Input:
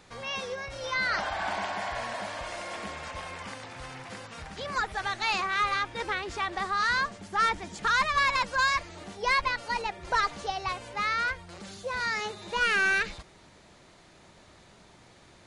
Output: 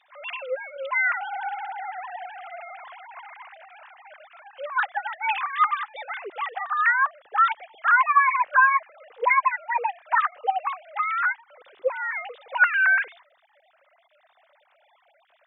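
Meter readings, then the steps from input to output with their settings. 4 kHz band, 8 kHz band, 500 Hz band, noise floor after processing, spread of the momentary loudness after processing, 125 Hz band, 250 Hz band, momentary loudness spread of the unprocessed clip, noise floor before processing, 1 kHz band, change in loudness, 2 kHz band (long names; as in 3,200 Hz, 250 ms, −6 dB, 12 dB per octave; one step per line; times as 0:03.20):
−10.0 dB, below −35 dB, +2.0 dB, −64 dBFS, 19 LU, below −40 dB, below −15 dB, 15 LU, −56 dBFS, +6.0 dB, +5.5 dB, +5.0 dB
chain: three sine waves on the formant tracks
level +5 dB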